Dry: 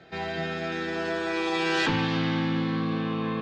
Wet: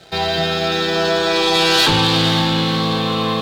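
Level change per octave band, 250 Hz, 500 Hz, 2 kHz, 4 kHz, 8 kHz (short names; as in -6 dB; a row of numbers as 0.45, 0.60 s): +7.0, +12.0, +9.0, +18.5, +18.5 dB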